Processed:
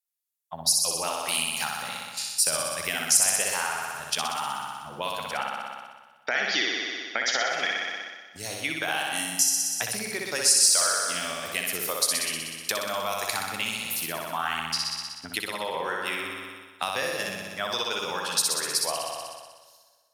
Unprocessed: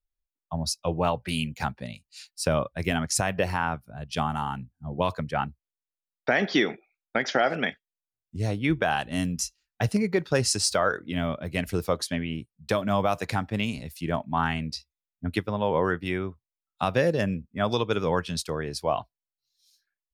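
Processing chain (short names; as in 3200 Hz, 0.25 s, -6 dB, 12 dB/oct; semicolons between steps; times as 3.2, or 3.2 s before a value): bell 13000 Hz +15 dB 1.7 oct; plate-style reverb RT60 2.3 s, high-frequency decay 0.8×, pre-delay 0 ms, DRR 13 dB; gate -38 dBFS, range -10 dB; on a send: flutter echo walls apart 10.6 m, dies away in 1.2 s; on the sum: compressor 2:1, threshold -31 dBFS, peak gain reduction 11 dB; HPF 1500 Hz 6 dB/oct; gain +6.5 dB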